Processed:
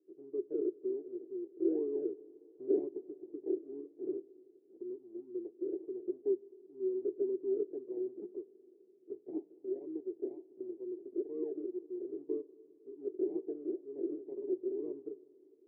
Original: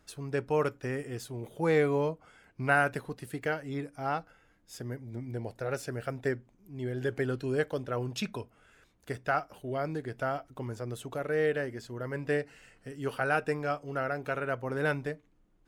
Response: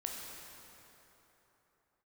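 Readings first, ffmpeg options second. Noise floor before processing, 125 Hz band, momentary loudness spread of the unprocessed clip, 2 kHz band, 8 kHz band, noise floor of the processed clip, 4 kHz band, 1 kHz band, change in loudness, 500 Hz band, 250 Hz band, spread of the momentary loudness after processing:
−66 dBFS, below −35 dB, 12 LU, below −40 dB, below −30 dB, −64 dBFS, below −35 dB, below −30 dB, −6.0 dB, −4.5 dB, −2.0 dB, 13 LU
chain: -filter_complex "[0:a]acrusher=samples=39:mix=1:aa=0.000001:lfo=1:lforange=23.4:lforate=2,asuperpass=centerf=360:order=4:qfactor=5.2,asplit=2[link_01][link_02];[1:a]atrim=start_sample=2205,asetrate=38367,aresample=44100[link_03];[link_02][link_03]afir=irnorm=-1:irlink=0,volume=-18dB[link_04];[link_01][link_04]amix=inputs=2:normalize=0,volume=4.5dB"

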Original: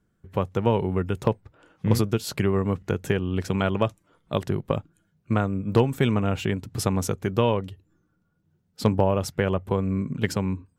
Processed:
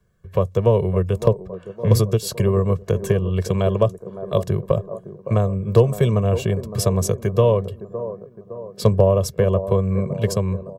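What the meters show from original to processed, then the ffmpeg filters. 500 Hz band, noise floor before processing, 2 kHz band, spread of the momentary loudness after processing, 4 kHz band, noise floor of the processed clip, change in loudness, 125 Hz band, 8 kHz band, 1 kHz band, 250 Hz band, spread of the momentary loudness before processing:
+7.0 dB, −71 dBFS, −4.0 dB, 12 LU, +1.5 dB, −46 dBFS, +5.0 dB, +7.0 dB, +5.5 dB, +0.5 dB, +1.0 dB, 7 LU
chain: -filter_complex "[0:a]aecho=1:1:1.8:0.86,acrossover=split=140|930|4000[link_01][link_02][link_03][link_04];[link_02]aecho=1:1:562|1124|1686|2248|2810|3372:0.282|0.149|0.0792|0.042|0.0222|0.0118[link_05];[link_03]acompressor=threshold=-44dB:ratio=6[link_06];[link_01][link_05][link_06][link_04]amix=inputs=4:normalize=0,volume=3.5dB"

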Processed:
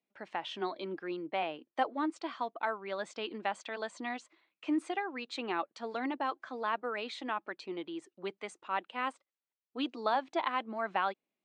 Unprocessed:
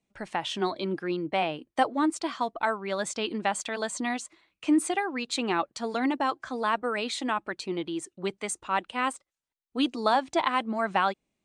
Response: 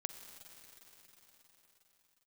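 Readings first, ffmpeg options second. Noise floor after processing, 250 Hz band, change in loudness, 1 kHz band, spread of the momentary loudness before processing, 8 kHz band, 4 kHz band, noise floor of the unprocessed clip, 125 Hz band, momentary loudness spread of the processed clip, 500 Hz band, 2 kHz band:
below −85 dBFS, −9.0 dB, −7.5 dB, −6.5 dB, 8 LU, −19.5 dB, −8.5 dB, below −85 dBFS, −13.5 dB, 8 LU, −7.0 dB, −7.0 dB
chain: -af "highpass=270,lowpass=3800,volume=-6.5dB"

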